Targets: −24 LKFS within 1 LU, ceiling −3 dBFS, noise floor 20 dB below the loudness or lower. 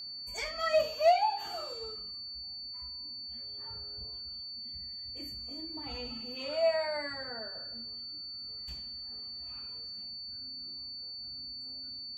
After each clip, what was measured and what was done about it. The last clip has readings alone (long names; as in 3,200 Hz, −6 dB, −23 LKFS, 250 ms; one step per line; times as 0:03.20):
interfering tone 4,500 Hz; level of the tone −40 dBFS; integrated loudness −35.5 LKFS; sample peak −15.5 dBFS; target loudness −24.0 LKFS
→ notch filter 4,500 Hz, Q 30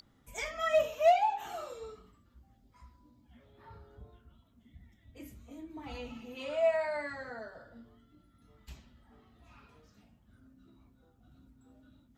interfering tone none found; integrated loudness −32.5 LKFS; sample peak −16.0 dBFS; target loudness −24.0 LKFS
→ level +8.5 dB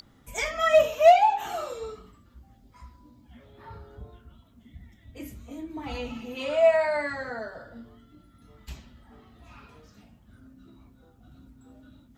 integrated loudness −24.0 LKFS; sample peak −7.5 dBFS; background noise floor −58 dBFS